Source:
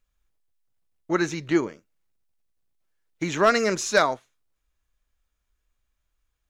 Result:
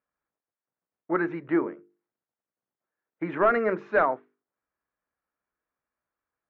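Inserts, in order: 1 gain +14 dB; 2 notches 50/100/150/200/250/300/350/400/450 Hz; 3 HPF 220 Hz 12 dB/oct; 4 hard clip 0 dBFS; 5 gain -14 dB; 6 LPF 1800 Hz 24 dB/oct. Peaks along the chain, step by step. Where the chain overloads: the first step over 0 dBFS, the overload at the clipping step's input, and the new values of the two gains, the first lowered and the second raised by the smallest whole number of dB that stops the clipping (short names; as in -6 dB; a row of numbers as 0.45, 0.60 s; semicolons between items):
+7.0, +7.0, +9.0, 0.0, -14.0, -12.5 dBFS; step 1, 9.0 dB; step 1 +5 dB, step 5 -5 dB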